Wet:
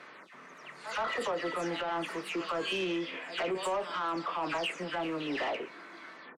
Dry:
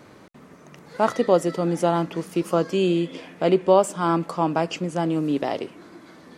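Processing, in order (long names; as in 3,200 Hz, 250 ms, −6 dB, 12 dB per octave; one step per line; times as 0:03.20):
every frequency bin delayed by itself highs early, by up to 209 ms
resonant band-pass 1,900 Hz, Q 1.1
double-tracking delay 27 ms −13 dB
echo ahead of the sound 123 ms −21.5 dB
brickwall limiter −27.5 dBFS, peak gain reduction 11 dB
soft clipping −32.5 dBFS, distortion −15 dB
level +6 dB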